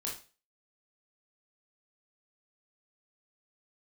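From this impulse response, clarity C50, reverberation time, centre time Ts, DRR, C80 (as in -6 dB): 6.0 dB, 0.35 s, 29 ms, -3.5 dB, 13.0 dB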